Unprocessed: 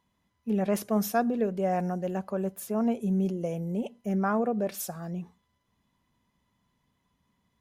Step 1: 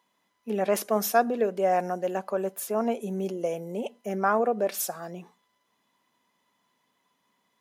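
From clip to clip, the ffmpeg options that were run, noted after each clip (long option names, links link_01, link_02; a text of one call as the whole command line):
ffmpeg -i in.wav -af "highpass=380,volume=5.5dB" out.wav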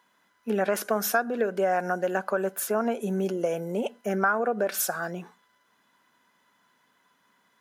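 ffmpeg -i in.wav -af "equalizer=frequency=1500:width=4.1:gain=13.5,acompressor=threshold=-26dB:ratio=4,volume=4dB" out.wav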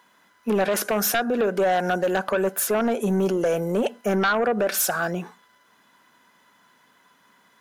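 ffmpeg -i in.wav -filter_complex "[0:a]asplit=2[link_01][link_02];[link_02]alimiter=limit=-19.5dB:level=0:latency=1:release=30,volume=-1.5dB[link_03];[link_01][link_03]amix=inputs=2:normalize=0,aeval=exprs='0.398*sin(PI/2*2.24*val(0)/0.398)':channel_layout=same,volume=-8.5dB" out.wav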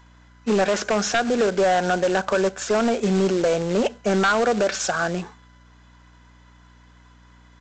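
ffmpeg -i in.wav -af "aresample=16000,acrusher=bits=3:mode=log:mix=0:aa=0.000001,aresample=44100,aeval=exprs='val(0)+0.00251*(sin(2*PI*60*n/s)+sin(2*PI*2*60*n/s)/2+sin(2*PI*3*60*n/s)/3+sin(2*PI*4*60*n/s)/4+sin(2*PI*5*60*n/s)/5)':channel_layout=same,volume=1.5dB" out.wav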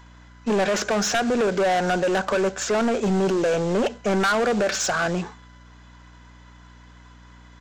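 ffmpeg -i in.wav -af "asoftclip=type=tanh:threshold=-21dB,volume=3.5dB" out.wav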